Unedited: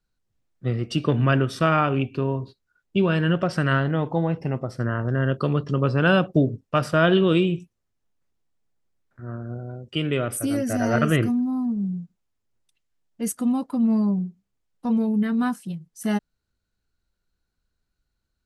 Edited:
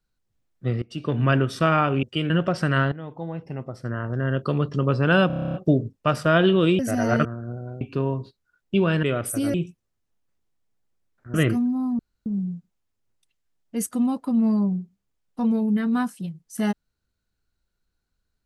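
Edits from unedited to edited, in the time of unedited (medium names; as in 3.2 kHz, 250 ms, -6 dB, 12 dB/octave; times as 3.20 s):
0.82–1.29 s: fade in, from -20 dB
2.03–3.25 s: swap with 9.83–10.10 s
3.87–5.65 s: fade in, from -14.5 dB
6.22 s: stutter 0.03 s, 10 plays
7.47–9.27 s: swap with 10.61–11.07 s
11.72 s: insert room tone 0.27 s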